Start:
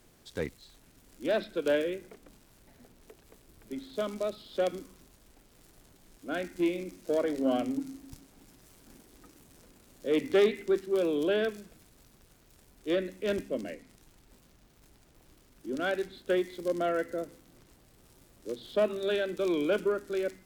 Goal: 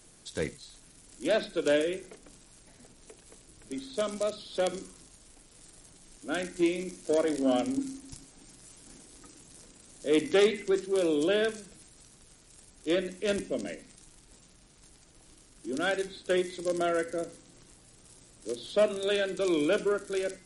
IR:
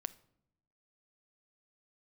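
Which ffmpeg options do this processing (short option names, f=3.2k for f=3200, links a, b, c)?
-filter_complex "[0:a]aemphasis=mode=production:type=50fm[a];[1:a]atrim=start_sample=2205,atrim=end_sample=4410[b];[a][b]afir=irnorm=-1:irlink=0,volume=4dB" -ar 44100 -c:a libmp3lame -b:a 48k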